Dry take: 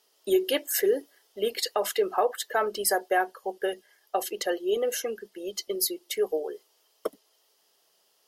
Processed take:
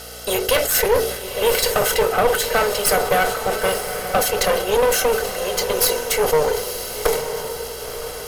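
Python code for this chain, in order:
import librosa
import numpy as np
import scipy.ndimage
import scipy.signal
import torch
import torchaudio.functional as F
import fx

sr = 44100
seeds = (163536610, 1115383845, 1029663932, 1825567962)

p1 = fx.bin_compress(x, sr, power=0.6)
p2 = fx.tilt_shelf(p1, sr, db=-3.5, hz=970.0)
p3 = fx.hum_notches(p2, sr, base_hz=50, count=9)
p4 = p3 + 0.78 * np.pad(p3, (int(1.5 * sr / 1000.0), 0))[:len(p3)]
p5 = fx.rider(p4, sr, range_db=10, speed_s=2.0)
p6 = p4 + F.gain(torch.from_numpy(p5), 1.5).numpy()
p7 = fx.add_hum(p6, sr, base_hz=60, snr_db=23)
p8 = fx.small_body(p7, sr, hz=(460.0, 1500.0, 2300.0), ring_ms=45, db=11)
p9 = fx.clip_asym(p8, sr, top_db=-20.5, bottom_db=-3.0)
p10 = p9 + fx.echo_diffused(p9, sr, ms=975, feedback_pct=41, wet_db=-8, dry=0)
p11 = fx.sustainer(p10, sr, db_per_s=69.0)
y = F.gain(torch.from_numpy(p11), -3.0).numpy()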